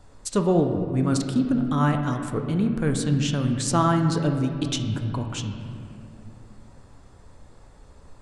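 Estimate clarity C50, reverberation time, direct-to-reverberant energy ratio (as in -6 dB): 6.0 dB, 2.5 s, 4.0 dB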